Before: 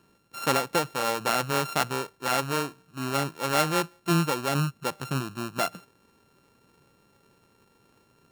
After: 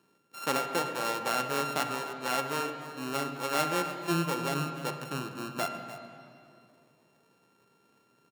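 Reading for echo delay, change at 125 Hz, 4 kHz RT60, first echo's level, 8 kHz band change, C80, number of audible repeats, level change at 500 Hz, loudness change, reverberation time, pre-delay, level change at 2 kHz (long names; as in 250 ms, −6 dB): 299 ms, −8.0 dB, 2.1 s, −14.5 dB, −5.0 dB, 7.0 dB, 1, −4.0 dB, −4.5 dB, 2.6 s, 8 ms, −4.0 dB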